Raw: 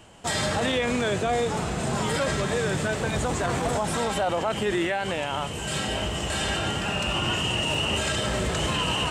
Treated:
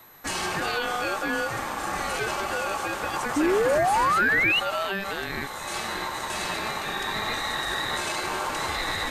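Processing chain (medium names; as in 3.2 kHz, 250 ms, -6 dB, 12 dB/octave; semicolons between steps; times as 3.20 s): ring modulator 980 Hz; whistle 12 kHz -51 dBFS; painted sound rise, 3.36–4.60 s, 280–3000 Hz -22 dBFS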